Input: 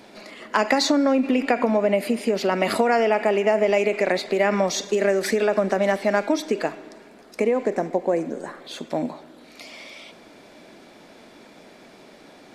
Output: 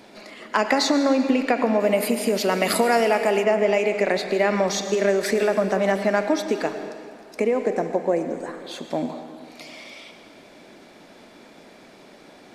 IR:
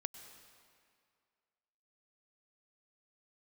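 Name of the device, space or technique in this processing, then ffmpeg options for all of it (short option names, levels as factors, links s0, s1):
stairwell: -filter_complex "[1:a]atrim=start_sample=2205[s0];[0:a][s0]afir=irnorm=-1:irlink=0,asettb=1/sr,asplit=3[s1][s2][s3];[s1]atrim=end=1.804[s4];[s2]atrim=start=1.8:end=3.44,asetpts=PTS-STARTPTS,afade=t=in:d=0.004:c=qsin,afade=t=out:st=1.636:d=0.004:c=qsin,aemphasis=mode=production:type=50kf[s5];[s3]atrim=start=3.436[s6];[s4][s5]acrossfade=d=0.004:c1=hsin:c2=qsin[s7];[s7][s6]acrossfade=d=0.004:c1=qsin:c2=hsin,volume=1.26"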